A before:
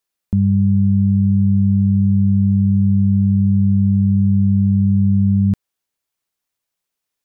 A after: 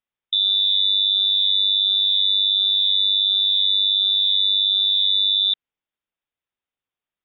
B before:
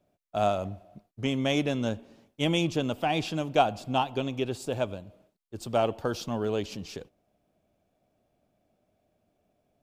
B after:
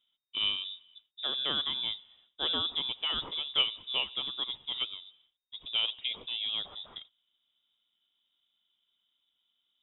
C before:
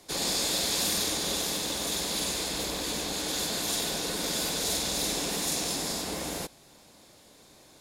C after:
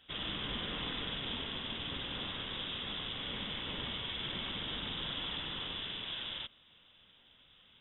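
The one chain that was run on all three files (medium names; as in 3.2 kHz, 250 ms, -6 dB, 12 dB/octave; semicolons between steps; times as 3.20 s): frequency inversion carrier 3.7 kHz; trim -5.5 dB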